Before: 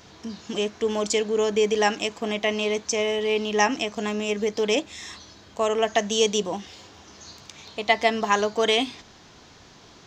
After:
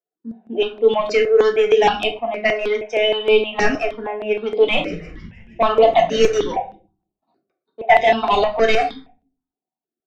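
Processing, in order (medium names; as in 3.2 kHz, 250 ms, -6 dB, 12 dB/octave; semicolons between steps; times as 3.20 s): expander on every frequency bin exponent 1.5; gate -52 dBFS, range -26 dB; high-pass 270 Hz 24 dB/octave; level-controlled noise filter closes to 390 Hz, open at -20 dBFS; treble shelf 6 kHz +10.5 dB; small resonant body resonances 740/3700 Hz, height 14 dB, ringing for 45 ms; overdrive pedal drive 25 dB, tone 6.1 kHz, clips at -1 dBFS; distance through air 210 m; 4.45–6.52 s: frequency-shifting echo 157 ms, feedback 60%, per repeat -130 Hz, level -15.5 dB; simulated room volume 260 m³, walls furnished, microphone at 1.5 m; stepped phaser 6.4 Hz 920–5800 Hz; trim -2.5 dB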